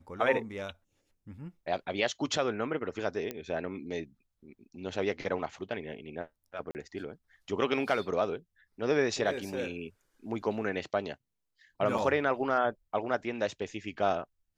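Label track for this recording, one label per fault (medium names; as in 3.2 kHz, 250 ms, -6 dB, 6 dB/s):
3.310000	3.310000	pop -20 dBFS
6.710000	6.750000	dropout 39 ms
11.980000	11.980000	dropout 4.6 ms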